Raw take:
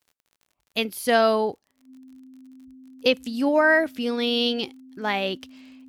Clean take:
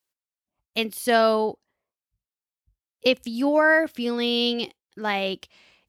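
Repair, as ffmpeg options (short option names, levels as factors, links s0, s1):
-af "adeclick=t=4,bandreject=f=260:w=30"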